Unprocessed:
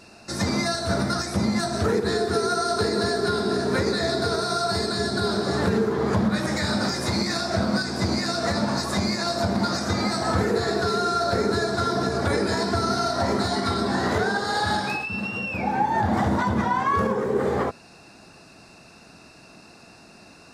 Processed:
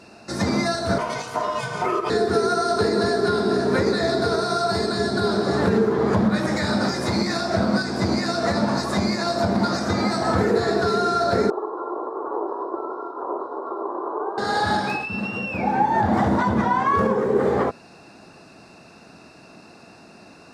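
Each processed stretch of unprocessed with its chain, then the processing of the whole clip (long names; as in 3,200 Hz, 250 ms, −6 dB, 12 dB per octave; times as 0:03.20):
0:00.98–0:02.10: ring modulation 820 Hz + notch comb filter 560 Hz
0:11.50–0:14.38: lower of the sound and its delayed copy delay 0.76 ms + elliptic band-pass filter 350–1,100 Hz
whole clip: high-pass filter 290 Hz 6 dB per octave; spectral tilt −2 dB per octave; level +3 dB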